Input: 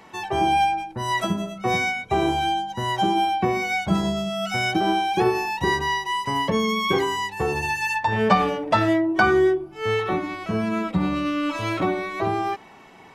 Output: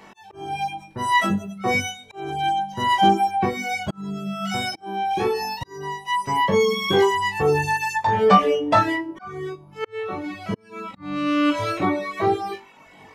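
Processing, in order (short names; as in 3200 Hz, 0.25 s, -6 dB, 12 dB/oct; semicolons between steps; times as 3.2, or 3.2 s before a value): flutter echo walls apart 3.5 m, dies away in 0.41 s; auto swell 0.707 s; reverb removal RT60 0.86 s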